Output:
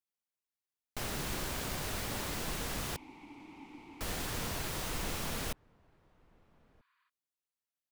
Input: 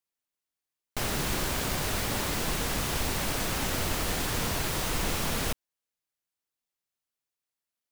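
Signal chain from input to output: 2.96–4.01 s: vowel filter u; echo from a far wall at 220 m, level -27 dB; 6.78–7.06 s: spectral replace 930–4900 Hz before; trim -7.5 dB

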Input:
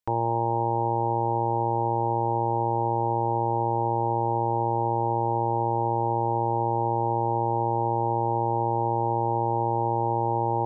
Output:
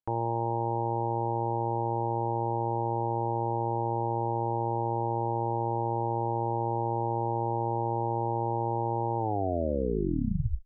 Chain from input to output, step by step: tape stop on the ending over 1.48 s; low-pass 1 kHz 6 dB/octave; trim -3 dB

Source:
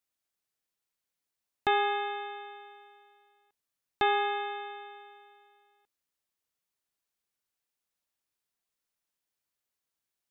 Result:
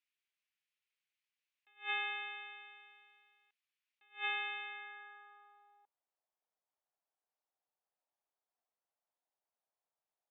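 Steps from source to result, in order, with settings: band-pass sweep 2.5 kHz -> 730 Hz, 4.61–6.03 s; attacks held to a fixed rise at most 240 dB/s; trim +5 dB

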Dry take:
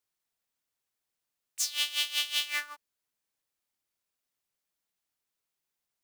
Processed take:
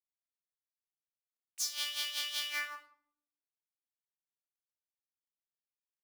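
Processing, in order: in parallel at -12 dB: overload inside the chain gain 26.5 dB; on the sum: bit crusher 12-bit; simulated room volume 900 m³, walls furnished, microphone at 2.3 m; trim -7.5 dB

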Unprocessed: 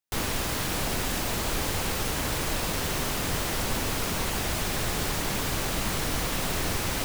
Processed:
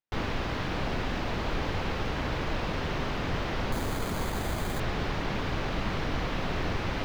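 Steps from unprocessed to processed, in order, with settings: distance through air 250 m; 3.72–4.80 s: careless resampling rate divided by 8×, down filtered, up hold

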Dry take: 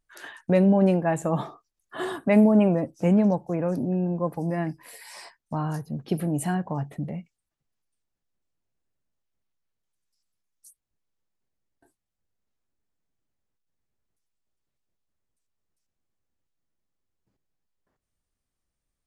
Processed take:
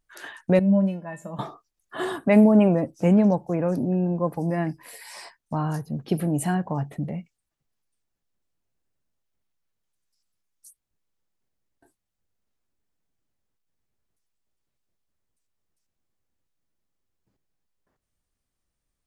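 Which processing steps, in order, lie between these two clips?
0.59–1.39 s: feedback comb 200 Hz, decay 0.18 s, harmonics odd, mix 90%; trim +2 dB

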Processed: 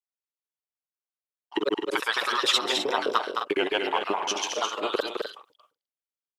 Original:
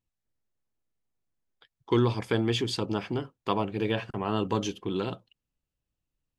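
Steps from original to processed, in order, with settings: slices played last to first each 132 ms, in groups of 3; LFO high-pass saw up 4.2 Hz 350–1700 Hz; granulator, pitch spread up and down by 3 st; in parallel at -11 dB: one-sided clip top -21.5 dBFS; on the sum: tilt EQ +2 dB/octave; on a send: loudspeakers at several distances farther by 73 m -6 dB, 88 m -10 dB; on the sum: gate with hold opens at -49 dBFS; trim +3 dB

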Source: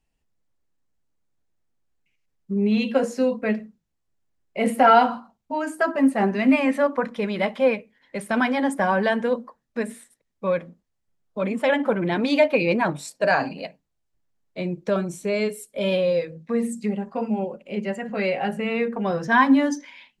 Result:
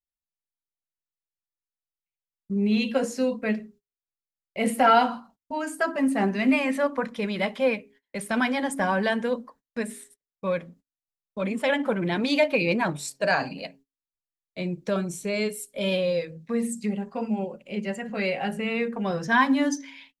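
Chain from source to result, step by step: treble shelf 2.2 kHz +9 dB; de-hum 136.6 Hz, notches 3; gate -48 dBFS, range -27 dB; bass shelf 220 Hz +6.5 dB; trim -5.5 dB

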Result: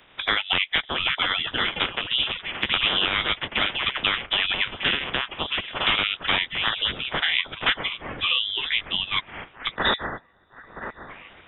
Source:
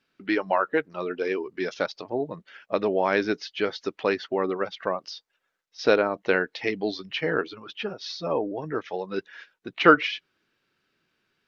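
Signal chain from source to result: spectral peaks clipped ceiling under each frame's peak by 23 dB; ever faster or slower copies 696 ms, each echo +6 st, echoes 3, each echo -6 dB; integer overflow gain 10 dB; on a send: feedback echo behind a high-pass 966 ms, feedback 64%, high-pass 2.2 kHz, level -23.5 dB; on the sum: time-frequency box 9.76–11.09 s, 280–1700 Hz -19 dB; frequency inversion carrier 3.7 kHz; three bands compressed up and down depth 70%; trim +2 dB

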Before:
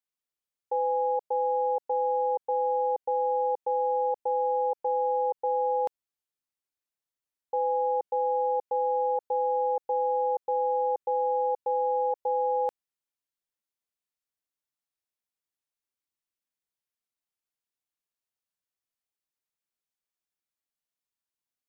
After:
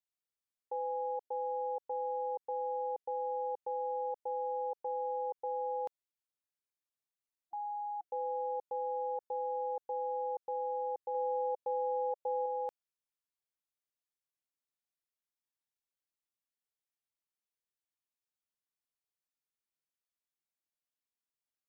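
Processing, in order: peak limiter -23.5 dBFS, peak gain reduction 3.5 dB; 7.36–8.05 s: spectral replace 340–730 Hz before; 11.14–12.46 s: dynamic bell 590 Hz, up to +5 dB, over -43 dBFS, Q 2.4; trim -6.5 dB

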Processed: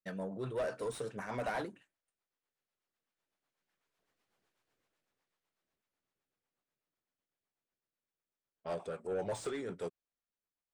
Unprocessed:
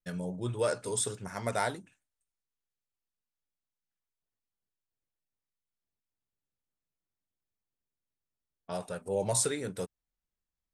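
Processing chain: Doppler pass-by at 4.42 s, 20 m/s, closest 11 m; rotary cabinet horn 8 Hz; overdrive pedal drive 24 dB, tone 1.1 kHz, clips at -33.5 dBFS; trim +8 dB

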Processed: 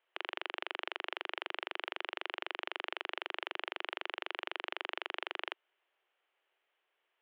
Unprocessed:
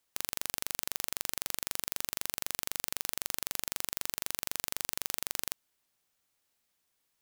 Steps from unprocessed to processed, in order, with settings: Chebyshev band-pass 360–3100 Hz, order 4; trim +5 dB

